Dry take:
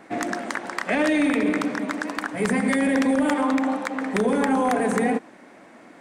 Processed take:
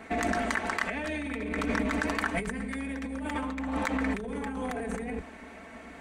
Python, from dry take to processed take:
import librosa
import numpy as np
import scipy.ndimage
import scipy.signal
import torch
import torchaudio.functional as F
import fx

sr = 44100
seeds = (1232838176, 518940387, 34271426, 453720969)

y = fx.octave_divider(x, sr, octaves=2, level_db=-4.0)
y = fx.peak_eq(y, sr, hz=2400.0, db=4.5, octaves=0.93)
y = fx.notch(y, sr, hz=5200.0, q=16.0)
y = y + 0.59 * np.pad(y, (int(4.5 * sr / 1000.0), 0))[:len(y)]
y = fx.over_compress(y, sr, threshold_db=-26.0, ratio=-1.0)
y = y * 10.0 ** (-6.0 / 20.0)